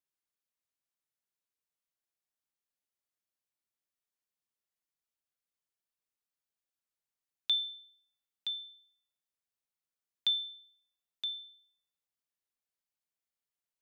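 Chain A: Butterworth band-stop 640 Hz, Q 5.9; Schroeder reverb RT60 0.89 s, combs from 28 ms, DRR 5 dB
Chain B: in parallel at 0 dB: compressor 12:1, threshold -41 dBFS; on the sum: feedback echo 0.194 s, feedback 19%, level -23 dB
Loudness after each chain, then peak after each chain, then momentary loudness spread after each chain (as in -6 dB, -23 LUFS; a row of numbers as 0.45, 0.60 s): -35.5, -32.5 LUFS; -21.0, -15.5 dBFS; 20, 17 LU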